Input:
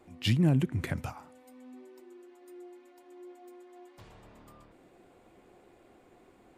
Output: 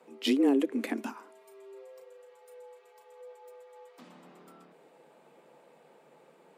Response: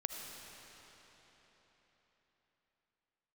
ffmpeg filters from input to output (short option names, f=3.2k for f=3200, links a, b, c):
-filter_complex "[0:a]afreqshift=140,asettb=1/sr,asplit=3[a][b][c];[a]atrim=end=1.384[d];[b]atrim=start=1.38:end=3.21,asetpts=PTS-STARTPTS,afade=t=in:d=0.004:c=qsin,afade=t=out:st=1.826:d=0.004:c=qsin,asplit=2[e][f];[f]adelay=35,volume=-8dB[g];[e][g]amix=inputs=2:normalize=0,atrim=end_sample=80703[h];[c]atrim=start=3.206[i];[d][h]acrossfade=d=0.004:c1=hsin:c2=qsin[j];[j][i]acrossfade=d=0.004:c1=qsin:c2=hsin"